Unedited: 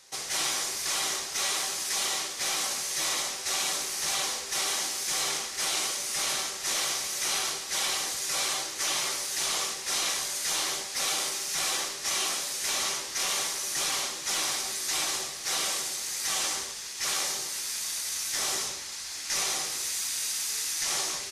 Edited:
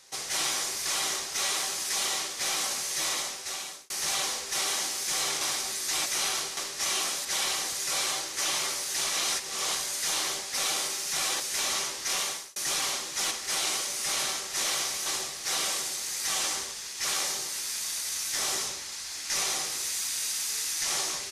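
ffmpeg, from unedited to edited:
ffmpeg -i in.wav -filter_complex "[0:a]asplit=12[link_01][link_02][link_03][link_04][link_05][link_06][link_07][link_08][link_09][link_10][link_11][link_12];[link_01]atrim=end=3.9,asetpts=PTS-STARTPTS,afade=type=out:start_time=2.83:duration=1.07:curve=qsin[link_13];[link_02]atrim=start=3.9:end=5.412,asetpts=PTS-STARTPTS,afade=type=in:duration=0.004:curve=hsin[link_14];[link_03]atrim=start=14.408:end=15.062[link_15];[link_04]atrim=start=7.158:end=7.672[link_16];[link_05]atrim=start=11.818:end=12.502[link_17];[link_06]atrim=start=7.668:end=9.512[link_18];[link_07]atrim=start=9.508:end=10.172,asetpts=PTS-STARTPTS,areverse[link_19];[link_08]atrim=start=10.168:end=11.822[link_20];[link_09]atrim=start=12.498:end=13.66,asetpts=PTS-STARTPTS,afade=type=out:start_time=0.782:duration=0.38[link_21];[link_10]atrim=start=13.66:end=14.412,asetpts=PTS-STARTPTS,afade=type=in:duration=0.004:curve=hsin[link_22];[link_11]atrim=start=5.408:end=7.162[link_23];[link_12]atrim=start=15.058[link_24];[link_13][link_14]concat=n=2:v=0:a=1[link_25];[link_25][link_15]acrossfade=duration=0.004:curve1=hsin:curve2=hsin[link_26];[link_26][link_16]acrossfade=duration=0.004:curve1=hsin:curve2=hsin[link_27];[link_27][link_17]acrossfade=duration=0.004:curve1=hsin:curve2=hsin[link_28];[link_28][link_18]acrossfade=duration=0.004:curve1=hsin:curve2=hsin[link_29];[link_29][link_19]acrossfade=duration=0.004:curve1=hsin:curve2=hsin[link_30];[link_30][link_20]acrossfade=duration=0.004:curve1=hsin:curve2=hsin[link_31];[link_21][link_22]concat=n=2:v=0:a=1[link_32];[link_31][link_32]acrossfade=duration=0.004:curve1=hsin:curve2=hsin[link_33];[link_33][link_23]acrossfade=duration=0.004:curve1=hsin:curve2=hsin[link_34];[link_34][link_24]acrossfade=duration=0.004:curve1=hsin:curve2=hsin" out.wav

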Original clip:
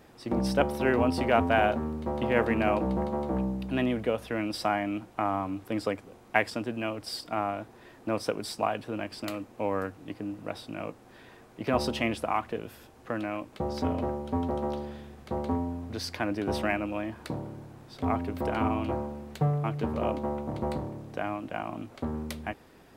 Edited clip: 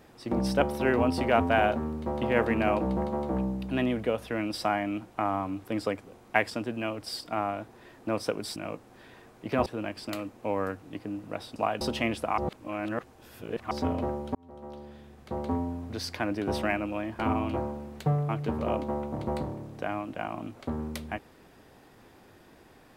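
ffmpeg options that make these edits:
ffmpeg -i in.wav -filter_complex "[0:a]asplit=9[link_01][link_02][link_03][link_04][link_05][link_06][link_07][link_08][link_09];[link_01]atrim=end=8.562[link_10];[link_02]atrim=start=10.708:end=11.812[link_11];[link_03]atrim=start=8.808:end=10.712[link_12];[link_04]atrim=start=8.558:end=8.812[link_13];[link_05]atrim=start=11.808:end=12.382[link_14];[link_06]atrim=start=12.378:end=13.712,asetpts=PTS-STARTPTS,areverse[link_15];[link_07]atrim=start=13.708:end=14.35,asetpts=PTS-STARTPTS,afade=type=out:start_time=0.638:duration=0.004:curve=hsin[link_16];[link_08]atrim=start=14.35:end=17.192,asetpts=PTS-STARTPTS,afade=type=in:duration=1.24[link_17];[link_09]atrim=start=18.538[link_18];[link_10][link_11]acrossfade=duration=0.004:curve1=hsin:curve2=hsin[link_19];[link_19][link_12]acrossfade=duration=0.004:curve1=hsin:curve2=hsin[link_20];[link_20][link_13]acrossfade=duration=0.004:curve1=hsin:curve2=hsin[link_21];[link_21][link_14]acrossfade=duration=0.004:curve1=hsin:curve2=hsin[link_22];[link_22][link_15]acrossfade=duration=0.004:curve1=hsin:curve2=hsin[link_23];[link_16][link_17]concat=n=2:v=0:a=1[link_24];[link_23][link_24]acrossfade=duration=0.004:curve1=hsin:curve2=hsin[link_25];[link_25][link_18]acrossfade=duration=0.004:curve1=hsin:curve2=hsin" out.wav

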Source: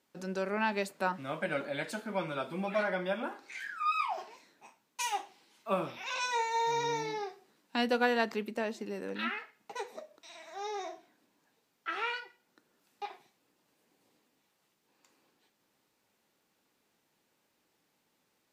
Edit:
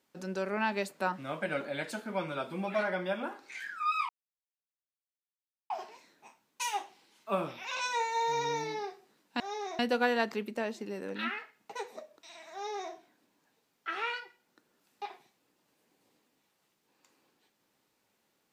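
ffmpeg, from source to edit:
ffmpeg -i in.wav -filter_complex "[0:a]asplit=4[link_01][link_02][link_03][link_04];[link_01]atrim=end=4.09,asetpts=PTS-STARTPTS,afade=type=out:start_time=4.086:duration=0.004:curve=hsin,apad=pad_dur=1.61[link_05];[link_02]atrim=start=4.09:end=7.792,asetpts=PTS-STARTPTS,afade=type=in:duration=0.004:curve=hsin[link_06];[link_03]atrim=start=10.528:end=10.922[link_07];[link_04]atrim=start=7.788[link_08];[link_05][link_06]concat=n=2:v=0:a=1[link_09];[link_09][link_07]acrossfade=duration=0.004:curve1=hsin:curve2=hsin[link_10];[link_10][link_08]acrossfade=duration=0.004:curve1=hsin:curve2=hsin" out.wav

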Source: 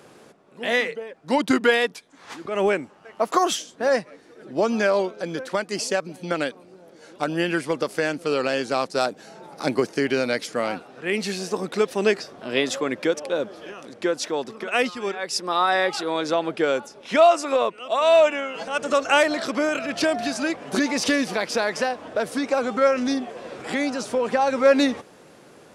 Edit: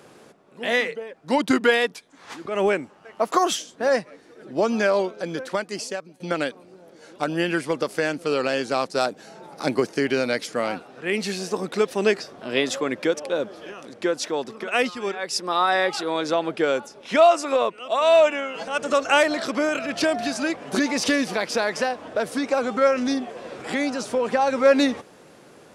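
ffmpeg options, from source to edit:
ffmpeg -i in.wav -filter_complex "[0:a]asplit=2[link_01][link_02];[link_01]atrim=end=6.2,asetpts=PTS-STARTPTS,afade=type=out:start_time=5.49:duration=0.71:silence=0.158489[link_03];[link_02]atrim=start=6.2,asetpts=PTS-STARTPTS,afade=type=in:duration=0.004:curve=hsin:silence=0.158489[link_04];[link_03][link_04]concat=n=2:v=0:a=1" out.wav

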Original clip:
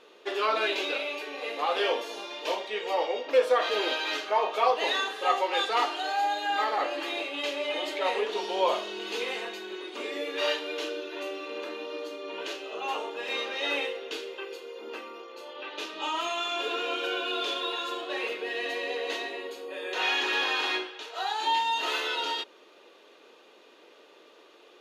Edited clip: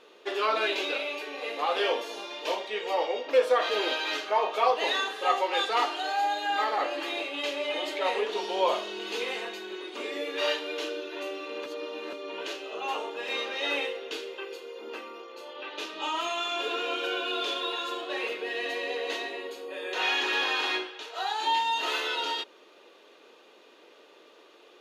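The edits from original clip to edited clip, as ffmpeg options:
ffmpeg -i in.wav -filter_complex "[0:a]asplit=3[link_01][link_02][link_03];[link_01]atrim=end=11.662[link_04];[link_02]atrim=start=11.658:end=12.132,asetpts=PTS-STARTPTS,areverse[link_05];[link_03]atrim=start=12.128[link_06];[link_04][link_05]acrossfade=duration=0.004:curve1=hsin:curve2=hsin[link_07];[link_07][link_06]acrossfade=duration=0.004:curve1=hsin:curve2=hsin" out.wav

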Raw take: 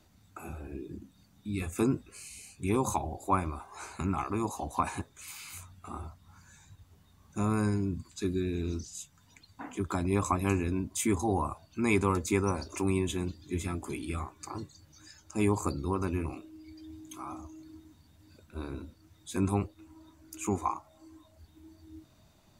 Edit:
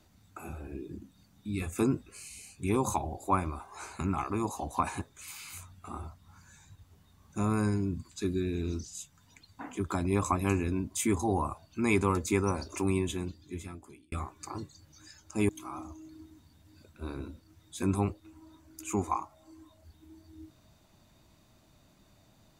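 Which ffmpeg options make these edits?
ffmpeg -i in.wav -filter_complex "[0:a]asplit=3[link_01][link_02][link_03];[link_01]atrim=end=14.12,asetpts=PTS-STARTPTS,afade=type=out:start_time=12.95:duration=1.17[link_04];[link_02]atrim=start=14.12:end=15.492,asetpts=PTS-STARTPTS,afade=type=in:duration=0.004:curve=hsin[link_05];[link_03]atrim=start=17.028[link_06];[link_04][link_05]concat=n=2:v=0:a=1[link_07];[link_07][link_06]acrossfade=duration=0.004:curve1=hsin:curve2=hsin" out.wav

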